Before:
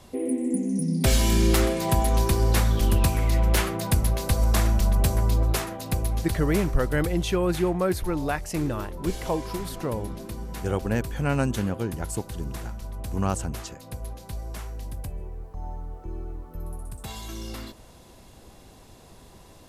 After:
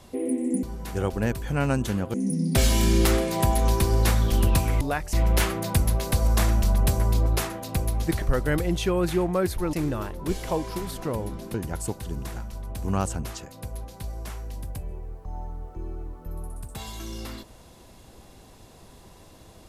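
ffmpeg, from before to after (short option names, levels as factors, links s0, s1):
-filter_complex "[0:a]asplit=8[s0][s1][s2][s3][s4][s5][s6][s7];[s0]atrim=end=0.632[s8];[s1]atrim=start=10.318:end=11.832[s9];[s2]atrim=start=0.628:end=3.302[s10];[s3]atrim=start=8.188:end=8.512[s11];[s4]atrim=start=3.298:end=6.392[s12];[s5]atrim=start=6.678:end=8.192[s13];[s6]atrim=start=8.508:end=10.322[s14];[s7]atrim=start=11.828[s15];[s8][s9]acrossfade=d=0.004:c1=hsin:c2=hsin[s16];[s16][s10]acrossfade=d=0.004:c1=hsin:c2=hsin[s17];[s17][s11]acrossfade=d=0.004:c1=hsin:c2=hsin[s18];[s18][s12]acrossfade=d=0.004:c1=hsin:c2=hsin[s19];[s19][s13]acrossfade=d=0.004:c1=hsin:c2=hsin[s20];[s20][s14]acrossfade=d=0.004:c1=hsin:c2=hsin[s21];[s21][s15]acrossfade=d=0.004:c1=hsin:c2=hsin"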